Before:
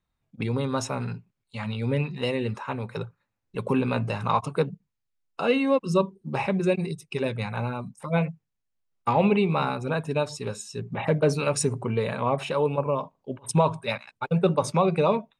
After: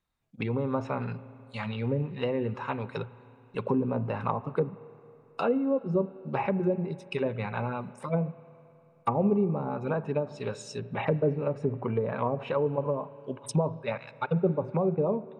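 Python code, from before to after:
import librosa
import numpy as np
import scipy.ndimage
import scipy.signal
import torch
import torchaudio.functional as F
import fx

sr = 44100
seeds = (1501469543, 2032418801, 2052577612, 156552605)

y = fx.env_lowpass_down(x, sr, base_hz=480.0, full_db=-20.0)
y = fx.low_shelf(y, sr, hz=250.0, db=-5.0)
y = fx.rev_spring(y, sr, rt60_s=3.1, pass_ms=(34, 45), chirp_ms=50, drr_db=17.0)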